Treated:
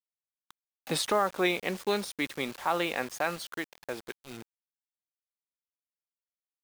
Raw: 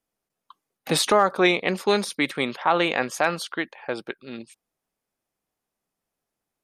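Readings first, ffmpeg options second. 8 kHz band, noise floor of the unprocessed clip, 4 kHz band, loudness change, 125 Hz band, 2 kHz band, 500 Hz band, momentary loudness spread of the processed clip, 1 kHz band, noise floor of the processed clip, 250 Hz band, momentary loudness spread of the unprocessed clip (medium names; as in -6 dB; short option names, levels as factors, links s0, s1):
-7.0 dB, -85 dBFS, -8.0 dB, -8.0 dB, -8.0 dB, -8.0 dB, -8.0 dB, 17 LU, -8.0 dB, under -85 dBFS, -8.0 dB, 15 LU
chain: -af "acrusher=bits=5:mix=0:aa=0.000001,volume=0.398"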